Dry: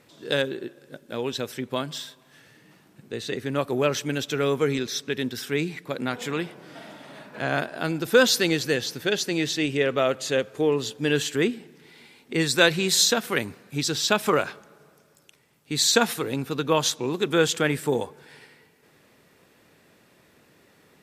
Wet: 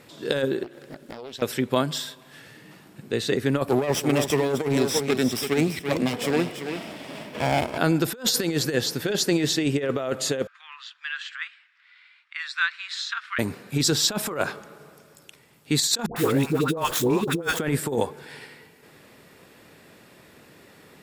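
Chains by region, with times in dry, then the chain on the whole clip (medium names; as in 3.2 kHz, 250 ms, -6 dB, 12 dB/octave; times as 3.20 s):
0.63–1.42 s: compression 8:1, threshold -41 dBFS + loudspeaker Doppler distortion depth 0.53 ms
3.67–7.78 s: comb filter that takes the minimum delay 0.36 ms + high-pass 94 Hz + delay 336 ms -9.5 dB
10.47–13.39 s: steep high-pass 1.2 kHz 48 dB/octave + tape spacing loss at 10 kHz 37 dB
16.06–17.59 s: median filter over 9 samples + treble shelf 6.9 kHz +8.5 dB + phase dispersion highs, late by 101 ms, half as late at 740 Hz
whole clip: band-stop 6.1 kHz, Q 16; dynamic bell 2.8 kHz, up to -6 dB, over -39 dBFS, Q 1; compressor with a negative ratio -26 dBFS, ratio -0.5; trim +4.5 dB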